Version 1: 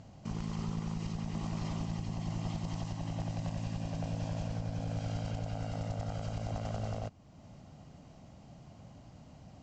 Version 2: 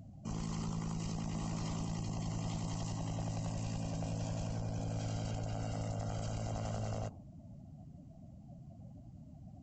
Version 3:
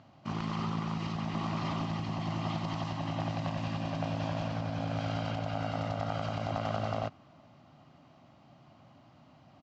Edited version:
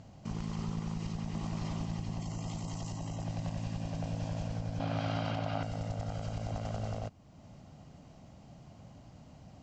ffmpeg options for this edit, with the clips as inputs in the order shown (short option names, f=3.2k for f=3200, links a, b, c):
-filter_complex "[0:a]asplit=3[a][b][c];[a]atrim=end=2.212[d];[1:a]atrim=start=2.208:end=3.242[e];[b]atrim=start=3.238:end=4.802[f];[2:a]atrim=start=4.798:end=5.632[g];[c]atrim=start=5.628[h];[d][e]acrossfade=d=0.004:c1=hsin:c2=hsin[i];[i][f]acrossfade=d=0.004:c1=hsin:c2=hsin[j];[j][g]acrossfade=d=0.004:c1=hsin:c2=hsin[k];[k][h]acrossfade=d=0.004:c1=hsin:c2=hsin"